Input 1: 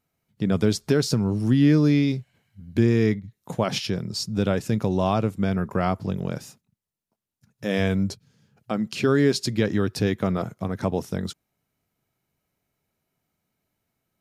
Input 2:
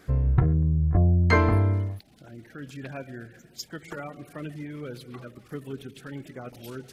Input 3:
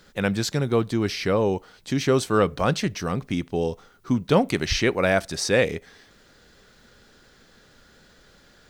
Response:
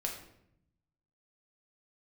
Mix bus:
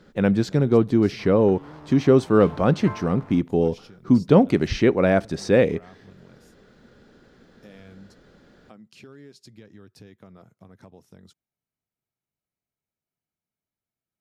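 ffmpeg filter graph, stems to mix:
-filter_complex "[0:a]volume=-16dB[a];[1:a]aeval=exprs='val(0)*gte(abs(val(0)),0.0668)':c=same,bandpass=f=1k:t=q:w=1.7:csg=0,adelay=1100,volume=0dB,asplit=2[b][c];[c]volume=-9.5dB[d];[2:a]lowpass=f=3k:p=1,equalizer=f=250:w=0.42:g=10,volume=-3.5dB[e];[a][b]amix=inputs=2:normalize=0,volume=26dB,asoftclip=hard,volume=-26dB,acompressor=threshold=-46dB:ratio=3,volume=0dB[f];[d]aecho=0:1:449:1[g];[e][f][g]amix=inputs=3:normalize=0"

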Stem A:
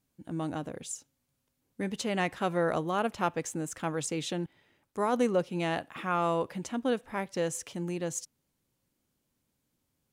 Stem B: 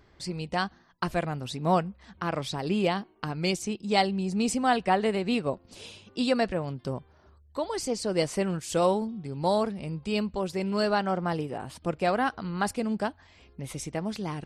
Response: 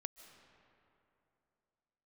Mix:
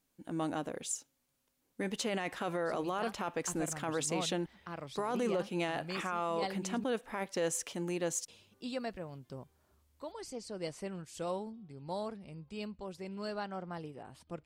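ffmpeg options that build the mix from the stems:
-filter_complex "[0:a]equalizer=f=100:w=0.67:g=-10.5,volume=1.5dB[a];[1:a]adelay=2450,volume=-13.5dB,asplit=3[b][c][d];[b]atrim=end=6.84,asetpts=PTS-STARTPTS,afade=t=out:st=6.836:d=0.004:c=hsin[e];[c]atrim=start=6.84:end=8.28,asetpts=PTS-STARTPTS,volume=0[f];[d]atrim=start=8.28,asetpts=PTS-STARTPTS,afade=t=in:d=0.004:c=hsin[g];[e][f][g]concat=n=3:v=0:a=1[h];[a][h]amix=inputs=2:normalize=0,alimiter=level_in=1dB:limit=-24dB:level=0:latency=1:release=11,volume=-1dB"

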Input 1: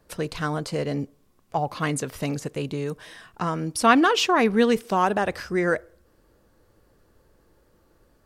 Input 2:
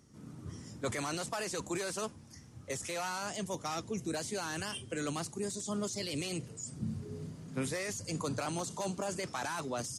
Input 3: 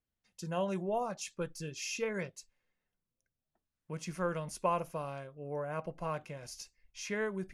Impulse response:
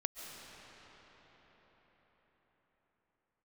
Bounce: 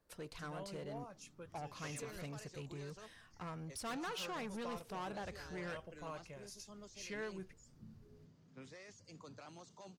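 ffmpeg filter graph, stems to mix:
-filter_complex "[0:a]asubboost=boost=5.5:cutoff=120,asoftclip=type=tanh:threshold=-22dB,volume=-15.5dB[a];[1:a]lowpass=f=6.1k:w=0.5412,lowpass=f=6.1k:w=1.3066,acompressor=mode=upward:threshold=-44dB:ratio=2.5,adelay=1000,volume=-17dB[b];[2:a]volume=-6.5dB,afade=t=in:st=5.68:d=0.64:silence=0.421697[c];[a][b][c]amix=inputs=3:normalize=0,lowshelf=f=380:g=-3,asoftclip=type=tanh:threshold=-35.5dB"

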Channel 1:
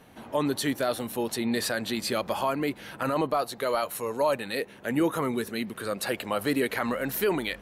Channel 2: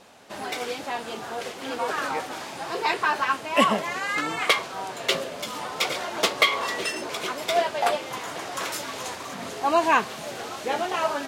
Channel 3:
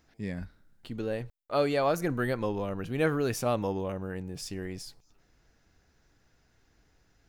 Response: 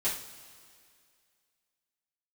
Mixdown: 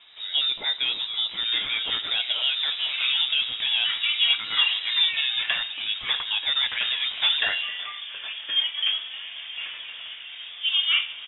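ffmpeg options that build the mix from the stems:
-filter_complex "[0:a]volume=0.5dB,asplit=2[a][b];[b]volume=-17dB[c];[1:a]acrossover=split=330 2100:gain=0.2 1 0.141[d][e][f];[d][e][f]amix=inputs=3:normalize=0,adelay=1000,volume=-4.5dB,asplit=2[g][h];[h]volume=-8.5dB[i];[2:a]acompressor=threshold=-35dB:ratio=6,volume=-1dB,asplit=2[j][k];[k]volume=-3.5dB[l];[3:a]atrim=start_sample=2205[m];[c][i][l]amix=inputs=3:normalize=0[n];[n][m]afir=irnorm=-1:irlink=0[o];[a][g][j][o]amix=inputs=4:normalize=0,lowpass=f=3.3k:t=q:w=0.5098,lowpass=f=3.3k:t=q:w=0.6013,lowpass=f=3.3k:t=q:w=0.9,lowpass=f=3.3k:t=q:w=2.563,afreqshift=-3900"

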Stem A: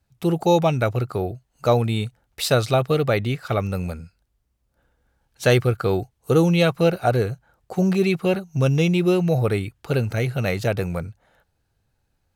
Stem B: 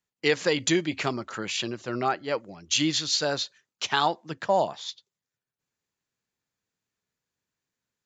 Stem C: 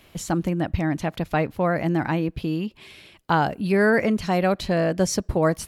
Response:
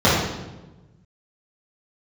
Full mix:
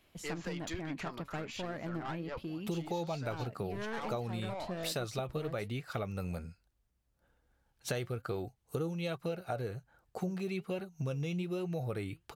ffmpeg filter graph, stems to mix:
-filter_complex "[0:a]adelay=2450,volume=-2dB[a];[1:a]equalizer=f=1.1k:w=0.65:g=9.5,aeval=exprs='(tanh(6.31*val(0)+0.3)-tanh(0.3))/6.31':c=same,volume=-12dB[b];[2:a]aeval=exprs='clip(val(0),-1,0.0794)':c=same,volume=-10dB[c];[a][b][c]amix=inputs=3:normalize=0,flanger=delay=2.5:depth=4.7:regen=74:speed=1.2:shape=triangular,acompressor=threshold=-34dB:ratio=6"

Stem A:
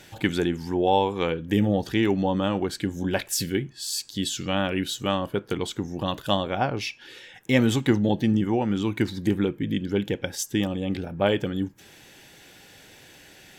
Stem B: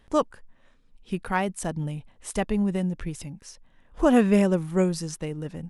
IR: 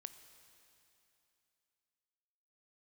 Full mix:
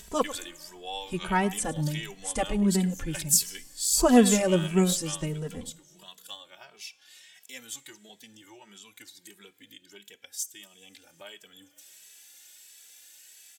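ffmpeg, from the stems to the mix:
-filter_complex "[0:a]aderivative,dynaudnorm=f=150:g=3:m=6.5dB,volume=-4.5dB,afade=t=out:st=4.98:d=0.4:silence=0.398107,asplit=2[a][b];[b]volume=-3.5dB[c];[1:a]volume=1dB,asplit=3[d][e][f];[e]volume=-9.5dB[g];[f]volume=-15dB[h];[2:a]atrim=start_sample=2205[i];[c][g]amix=inputs=2:normalize=0[j];[j][i]afir=irnorm=-1:irlink=0[k];[h]aecho=0:1:104:1[l];[a][d][k][l]amix=inputs=4:normalize=0,equalizer=f=7.8k:t=o:w=0.69:g=6.5,acompressor=mode=upward:threshold=-41dB:ratio=2.5,asplit=2[m][n];[n]adelay=2.7,afreqshift=1.5[o];[m][o]amix=inputs=2:normalize=1"

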